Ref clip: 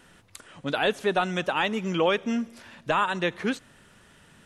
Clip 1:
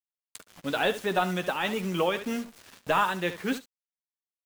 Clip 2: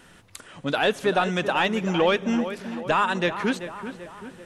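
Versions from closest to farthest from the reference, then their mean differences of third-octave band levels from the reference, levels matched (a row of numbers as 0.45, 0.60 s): 2, 1; 3.5, 8.0 dB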